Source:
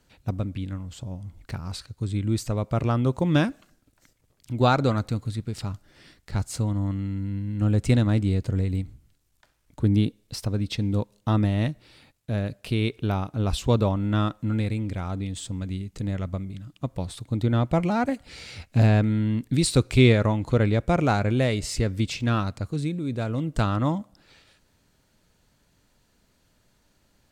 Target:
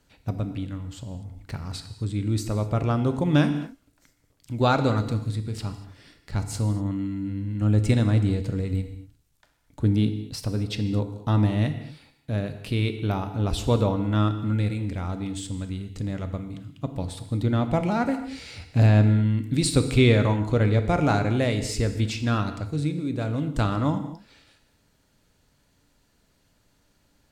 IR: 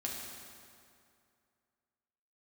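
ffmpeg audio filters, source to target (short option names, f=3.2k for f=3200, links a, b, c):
-filter_complex "[0:a]asplit=2[a][b];[1:a]atrim=start_sample=2205,afade=t=out:st=0.35:d=0.01,atrim=end_sample=15876,asetrate=52920,aresample=44100[c];[b][c]afir=irnorm=-1:irlink=0,volume=-2dB[d];[a][d]amix=inputs=2:normalize=0,volume=-4dB"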